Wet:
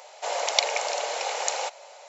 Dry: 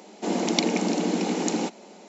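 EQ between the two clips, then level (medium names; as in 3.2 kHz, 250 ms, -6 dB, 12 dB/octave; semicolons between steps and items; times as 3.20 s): elliptic high-pass 550 Hz, stop band 50 dB; +4.0 dB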